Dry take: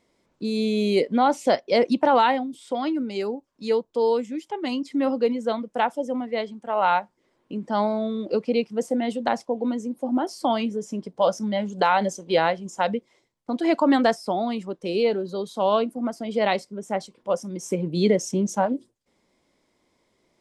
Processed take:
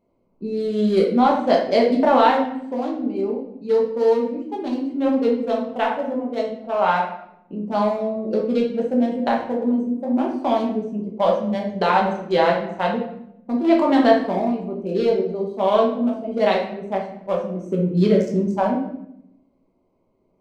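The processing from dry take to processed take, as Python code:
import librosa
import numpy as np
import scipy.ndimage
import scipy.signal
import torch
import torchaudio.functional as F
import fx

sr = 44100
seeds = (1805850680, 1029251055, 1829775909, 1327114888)

y = fx.wiener(x, sr, points=25)
y = fx.high_shelf(y, sr, hz=8200.0, db=-10.0, at=(6.5, 6.96))
y = fx.room_shoebox(y, sr, seeds[0], volume_m3=200.0, walls='mixed', distance_m=1.2)
y = y * librosa.db_to_amplitude(-1.0)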